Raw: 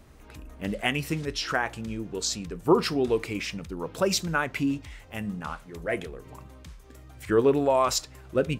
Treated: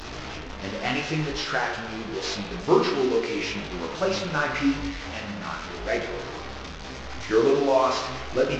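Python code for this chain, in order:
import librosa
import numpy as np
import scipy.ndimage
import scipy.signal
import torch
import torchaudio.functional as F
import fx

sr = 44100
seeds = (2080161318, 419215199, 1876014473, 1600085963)

y = fx.delta_mod(x, sr, bps=32000, step_db=-29.5)
y = fx.peak_eq(y, sr, hz=110.0, db=-5.5, octaves=2.6)
y = fx.rev_spring(y, sr, rt60_s=1.1, pass_ms=(39,), chirp_ms=30, drr_db=3.5)
y = fx.detune_double(y, sr, cents=29)
y = y * librosa.db_to_amplitude(5.0)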